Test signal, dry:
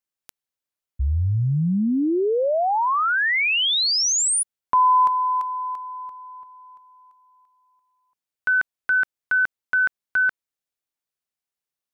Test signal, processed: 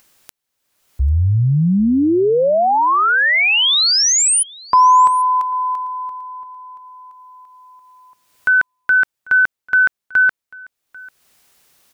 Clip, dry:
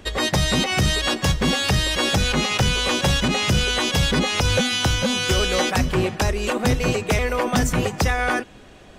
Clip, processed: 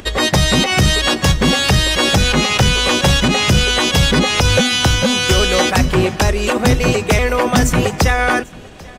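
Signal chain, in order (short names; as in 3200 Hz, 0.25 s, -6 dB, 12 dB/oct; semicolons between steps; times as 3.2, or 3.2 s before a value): upward compressor, threshold -41 dBFS; on a send: echo 0.793 s -23.5 dB; on the sum: gain +6.5 dB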